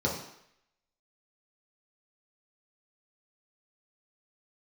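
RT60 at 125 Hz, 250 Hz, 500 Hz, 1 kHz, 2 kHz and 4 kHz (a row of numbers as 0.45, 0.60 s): 0.60, 0.60, 0.70, 0.75, 0.80, 0.75 s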